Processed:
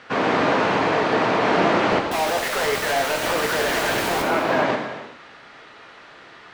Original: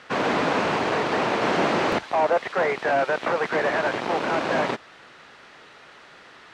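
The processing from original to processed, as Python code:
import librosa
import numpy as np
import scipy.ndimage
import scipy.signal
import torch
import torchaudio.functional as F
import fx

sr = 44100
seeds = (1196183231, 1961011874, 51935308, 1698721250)

y = fx.high_shelf(x, sr, hz=7800.0, db=-10.5)
y = fx.quant_companded(y, sr, bits=2, at=(2.11, 4.22))
y = fx.rev_gated(y, sr, seeds[0], gate_ms=450, shape='falling', drr_db=1.5)
y = y * librosa.db_to_amplitude(1.5)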